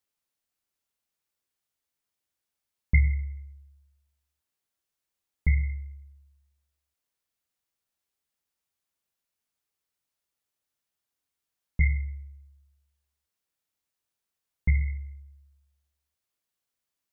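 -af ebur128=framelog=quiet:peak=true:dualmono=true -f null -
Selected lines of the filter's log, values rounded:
Integrated loudness:
  I:         -25.7 LUFS
  Threshold: -38.3 LUFS
Loudness range:
  LRA:         2.7 LU
  Threshold: -52.0 LUFS
  LRA low:   -33.0 LUFS
  LRA high:  -30.2 LUFS
True peak:
  Peak:       -9.8 dBFS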